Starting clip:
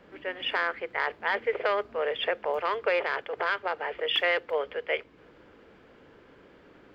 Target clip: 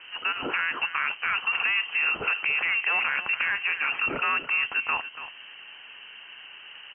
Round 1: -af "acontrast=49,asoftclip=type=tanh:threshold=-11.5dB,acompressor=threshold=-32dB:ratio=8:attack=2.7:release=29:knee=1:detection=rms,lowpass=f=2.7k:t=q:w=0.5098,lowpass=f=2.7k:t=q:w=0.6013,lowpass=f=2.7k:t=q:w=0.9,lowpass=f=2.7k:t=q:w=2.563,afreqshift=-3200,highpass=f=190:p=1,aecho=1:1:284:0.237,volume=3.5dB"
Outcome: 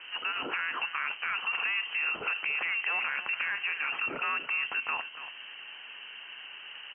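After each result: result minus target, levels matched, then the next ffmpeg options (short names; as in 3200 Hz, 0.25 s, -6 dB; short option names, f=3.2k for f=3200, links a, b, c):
compressor: peak gain reduction +5.5 dB; 125 Hz band -4.0 dB
-af "acontrast=49,asoftclip=type=tanh:threshold=-11.5dB,acompressor=threshold=-25.5dB:ratio=8:attack=2.7:release=29:knee=1:detection=rms,lowpass=f=2.7k:t=q:w=0.5098,lowpass=f=2.7k:t=q:w=0.6013,lowpass=f=2.7k:t=q:w=0.9,lowpass=f=2.7k:t=q:w=2.563,afreqshift=-3200,highpass=f=190:p=1,aecho=1:1:284:0.237,volume=3.5dB"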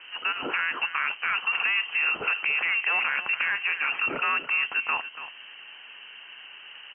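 125 Hz band -4.0 dB
-af "acontrast=49,asoftclip=type=tanh:threshold=-11.5dB,acompressor=threshold=-25.5dB:ratio=8:attack=2.7:release=29:knee=1:detection=rms,lowpass=f=2.7k:t=q:w=0.5098,lowpass=f=2.7k:t=q:w=0.6013,lowpass=f=2.7k:t=q:w=0.9,lowpass=f=2.7k:t=q:w=2.563,afreqshift=-3200,highpass=f=50:p=1,aecho=1:1:284:0.237,volume=3.5dB"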